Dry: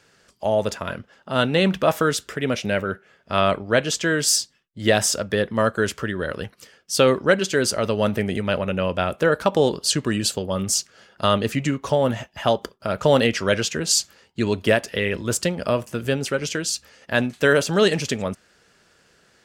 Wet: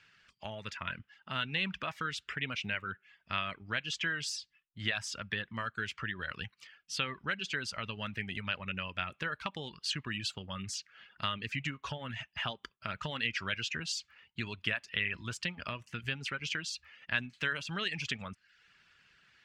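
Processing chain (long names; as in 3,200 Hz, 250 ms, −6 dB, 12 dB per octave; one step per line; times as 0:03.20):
downward compressor 2.5 to 1, threshold −25 dBFS, peak gain reduction 9.5 dB
reverb reduction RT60 0.54 s
drawn EQ curve 140 Hz 0 dB, 530 Hz −13 dB, 1,100 Hz +1 dB, 2,600 Hz +10 dB, 14,000 Hz −19 dB
level −8.5 dB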